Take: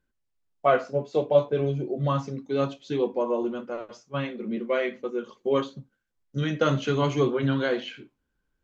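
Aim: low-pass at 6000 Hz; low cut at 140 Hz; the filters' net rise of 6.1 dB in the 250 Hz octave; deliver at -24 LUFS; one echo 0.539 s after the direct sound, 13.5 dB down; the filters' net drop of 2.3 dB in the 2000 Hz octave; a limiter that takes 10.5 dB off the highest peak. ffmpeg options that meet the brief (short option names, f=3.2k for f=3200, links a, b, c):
-af "highpass=140,lowpass=6k,equalizer=f=250:t=o:g=8,equalizer=f=2k:t=o:g=-3.5,alimiter=limit=-17dB:level=0:latency=1,aecho=1:1:539:0.211,volume=3.5dB"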